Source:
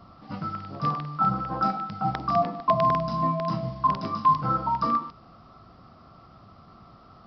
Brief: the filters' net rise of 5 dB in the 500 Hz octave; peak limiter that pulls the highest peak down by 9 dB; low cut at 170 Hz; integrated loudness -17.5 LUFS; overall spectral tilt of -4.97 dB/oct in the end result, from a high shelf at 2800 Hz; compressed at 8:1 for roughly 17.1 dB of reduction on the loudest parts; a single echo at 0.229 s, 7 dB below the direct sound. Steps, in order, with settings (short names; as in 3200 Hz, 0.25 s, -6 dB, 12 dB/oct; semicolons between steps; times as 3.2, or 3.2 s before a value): HPF 170 Hz; bell 500 Hz +7.5 dB; high shelf 2800 Hz +7.5 dB; compressor 8:1, threshold -32 dBFS; limiter -28.5 dBFS; echo 0.229 s -7 dB; gain +19.5 dB